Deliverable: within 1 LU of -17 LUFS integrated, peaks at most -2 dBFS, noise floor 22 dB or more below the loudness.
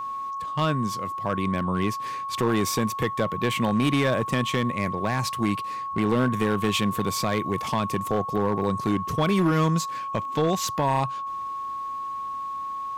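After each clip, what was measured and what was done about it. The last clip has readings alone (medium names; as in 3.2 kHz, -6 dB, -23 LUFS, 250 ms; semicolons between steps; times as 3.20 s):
clipped samples 1.1%; clipping level -16.0 dBFS; steady tone 1.1 kHz; tone level -29 dBFS; loudness -25.5 LUFS; peak level -16.0 dBFS; loudness target -17.0 LUFS
-> clip repair -16 dBFS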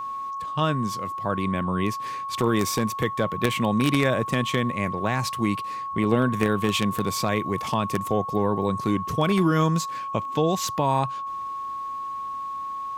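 clipped samples 0.0%; steady tone 1.1 kHz; tone level -29 dBFS
-> band-stop 1.1 kHz, Q 30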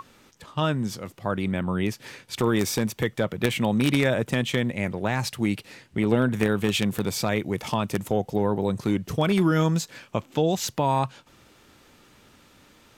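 steady tone not found; loudness -25.5 LUFS; peak level -6.5 dBFS; loudness target -17.0 LUFS
-> trim +8.5 dB; peak limiter -2 dBFS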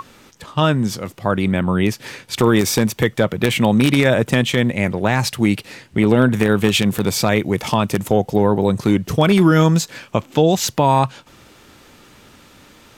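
loudness -17.5 LUFS; peak level -2.0 dBFS; noise floor -48 dBFS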